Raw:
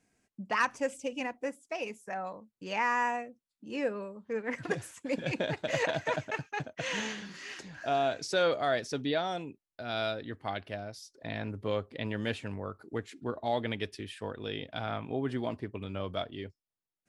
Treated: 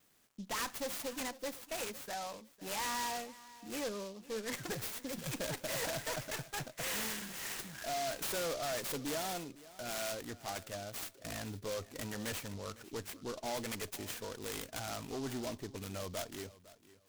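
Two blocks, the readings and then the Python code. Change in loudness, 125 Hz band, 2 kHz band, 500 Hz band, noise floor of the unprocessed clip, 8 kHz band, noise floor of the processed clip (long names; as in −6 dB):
−5.5 dB, −6.5 dB, −7.5 dB, −8.0 dB, below −85 dBFS, +7.5 dB, −63 dBFS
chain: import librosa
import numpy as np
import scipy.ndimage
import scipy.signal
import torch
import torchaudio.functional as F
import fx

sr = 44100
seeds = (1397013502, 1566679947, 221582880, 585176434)

p1 = librosa.effects.preemphasis(x, coef=0.8, zi=[0.0])
p2 = fx.spec_box(p1, sr, start_s=5.09, length_s=0.24, low_hz=240.0, high_hz=3100.0, gain_db=-8)
p3 = fx.tube_stage(p2, sr, drive_db=46.0, bias=0.35)
p4 = fx.vibrato(p3, sr, rate_hz=0.9, depth_cents=19.0)
p5 = fx.dmg_crackle(p4, sr, seeds[0], per_s=310.0, level_db=-72.0)
p6 = p5 + fx.echo_feedback(p5, sr, ms=505, feedback_pct=22, wet_db=-18.5, dry=0)
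p7 = fx.noise_mod_delay(p6, sr, seeds[1], noise_hz=4400.0, depth_ms=0.078)
y = p7 * 10.0 ** (12.0 / 20.0)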